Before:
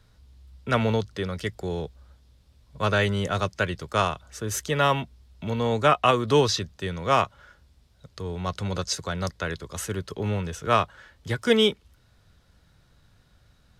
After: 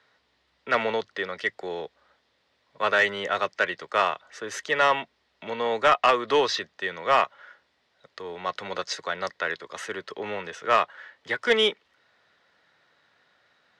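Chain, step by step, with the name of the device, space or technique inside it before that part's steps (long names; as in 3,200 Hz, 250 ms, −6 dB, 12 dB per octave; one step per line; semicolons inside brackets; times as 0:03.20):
intercom (band-pass filter 490–3,800 Hz; parametric band 1,900 Hz +8 dB 0.23 octaves; soft clipping −13 dBFS, distortion −17 dB)
level +3 dB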